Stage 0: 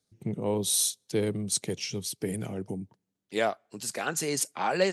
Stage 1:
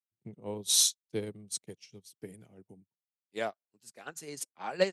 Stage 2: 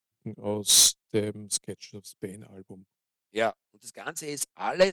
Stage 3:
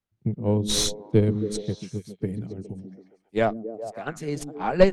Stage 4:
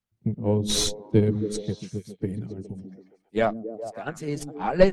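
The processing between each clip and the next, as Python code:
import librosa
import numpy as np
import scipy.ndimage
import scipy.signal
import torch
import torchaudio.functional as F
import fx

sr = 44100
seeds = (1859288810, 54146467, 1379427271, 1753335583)

y1 = fx.spec_box(x, sr, start_s=0.69, length_s=0.32, low_hz=840.0, high_hz=8000.0, gain_db=7)
y1 = fx.upward_expand(y1, sr, threshold_db=-45.0, expansion=2.5)
y2 = fx.tube_stage(y1, sr, drive_db=18.0, bias=0.2)
y2 = y2 * librosa.db_to_amplitude(8.5)
y3 = fx.riaa(y2, sr, side='playback')
y3 = fx.echo_stepped(y3, sr, ms=137, hz=220.0, octaves=0.7, feedback_pct=70, wet_db=-5)
y3 = y3 * librosa.db_to_amplitude(2.0)
y4 = fx.spec_quant(y3, sr, step_db=15)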